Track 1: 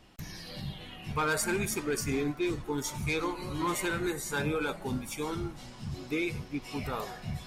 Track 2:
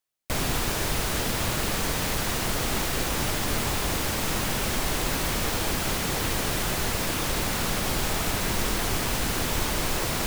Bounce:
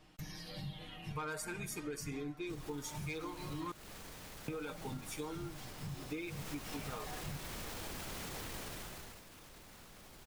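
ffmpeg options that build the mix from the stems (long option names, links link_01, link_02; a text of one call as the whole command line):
ffmpeg -i stem1.wav -i stem2.wav -filter_complex "[0:a]aecho=1:1:6.5:0.64,volume=-6dB,asplit=3[link_01][link_02][link_03];[link_01]atrim=end=3.72,asetpts=PTS-STARTPTS,afade=type=out:start_time=3.716:duration=0.004:curve=hsin[link_04];[link_02]atrim=start=3.72:end=4.48,asetpts=PTS-STARTPTS,volume=0[link_05];[link_03]atrim=start=4.48,asetpts=PTS-STARTPTS,afade=type=in:duration=0.004:curve=hsin[link_06];[link_04][link_05][link_06]concat=n=3:v=0:a=1[link_07];[1:a]alimiter=limit=-23.5dB:level=0:latency=1:release=33,adelay=2200,volume=-10.5dB,afade=type=in:start_time=6.25:duration=0.24:silence=0.421697,afade=type=out:start_time=8.54:duration=0.7:silence=0.223872[link_08];[link_07][link_08]amix=inputs=2:normalize=0,acompressor=threshold=-39dB:ratio=6" out.wav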